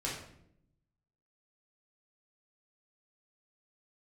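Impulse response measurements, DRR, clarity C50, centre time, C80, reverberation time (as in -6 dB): -6.0 dB, 3.0 dB, 43 ms, 7.0 dB, 0.70 s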